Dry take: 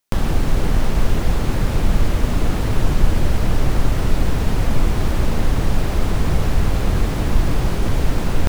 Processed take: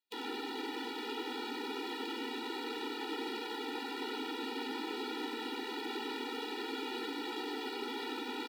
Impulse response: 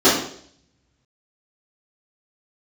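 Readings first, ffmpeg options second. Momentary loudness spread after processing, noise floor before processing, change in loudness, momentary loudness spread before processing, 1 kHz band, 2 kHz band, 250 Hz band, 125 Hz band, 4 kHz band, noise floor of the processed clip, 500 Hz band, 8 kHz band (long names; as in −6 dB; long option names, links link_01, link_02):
1 LU, −21 dBFS, −17.5 dB, 1 LU, −11.0 dB, −11.0 dB, −15.5 dB, below −40 dB, −6.5 dB, −42 dBFS, −13.0 dB, −20.0 dB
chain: -filter_complex "[0:a]highpass=frequency=61:width=0.5412,highpass=frequency=61:width=1.3066,highshelf=frequency=5100:width_type=q:width=3:gain=-9,acrossover=split=100|2400[link_01][link_02][link_03];[link_02]aeval=exprs='0.0668*(abs(mod(val(0)/0.0668+3,4)-2)-1)':channel_layout=same[link_04];[link_01][link_04][link_03]amix=inputs=3:normalize=0,aeval=exprs='0.251*(cos(1*acos(clip(val(0)/0.251,-1,1)))-cos(1*PI/2))+0.0126*(cos(7*acos(clip(val(0)/0.251,-1,1)))-cos(7*PI/2))':channel_layout=same,asplit=2[link_05][link_06];[link_06]aecho=0:1:93:0.531[link_07];[link_05][link_07]amix=inputs=2:normalize=0,afftfilt=real='re*eq(mod(floor(b*sr/1024/250),2),1)':imag='im*eq(mod(floor(b*sr/1024/250),2),1)':win_size=1024:overlap=0.75,volume=-8dB"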